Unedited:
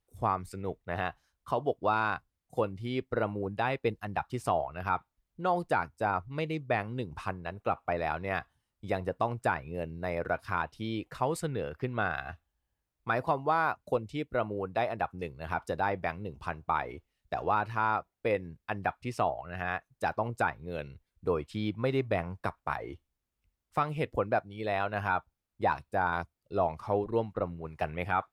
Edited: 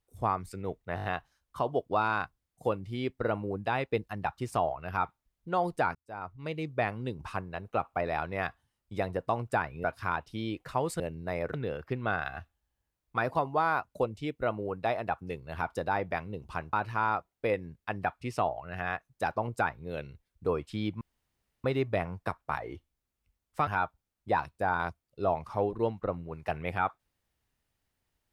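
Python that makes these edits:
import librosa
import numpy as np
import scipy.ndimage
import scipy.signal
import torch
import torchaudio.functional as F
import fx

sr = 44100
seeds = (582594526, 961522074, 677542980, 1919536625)

y = fx.edit(x, sr, fx.stutter(start_s=0.96, slice_s=0.02, count=5),
    fx.fade_in_span(start_s=5.87, length_s=0.77),
    fx.move(start_s=9.76, length_s=0.54, to_s=11.46),
    fx.cut(start_s=16.65, length_s=0.89),
    fx.insert_room_tone(at_s=21.82, length_s=0.63),
    fx.cut(start_s=23.85, length_s=1.15), tone=tone)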